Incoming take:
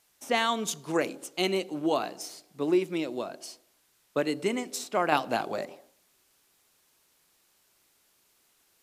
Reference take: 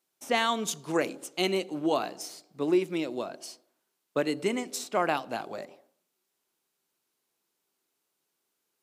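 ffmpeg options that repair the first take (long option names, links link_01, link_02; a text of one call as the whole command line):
ffmpeg -i in.wav -af "agate=range=-21dB:threshold=-60dB,asetnsamples=nb_out_samples=441:pad=0,asendcmd='5.12 volume volume -5.5dB',volume=0dB" out.wav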